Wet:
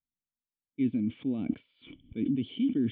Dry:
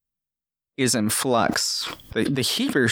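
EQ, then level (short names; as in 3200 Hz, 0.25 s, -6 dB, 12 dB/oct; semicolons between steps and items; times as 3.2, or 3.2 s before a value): vocal tract filter i; low shelf 250 Hz +7.5 dB; -4.5 dB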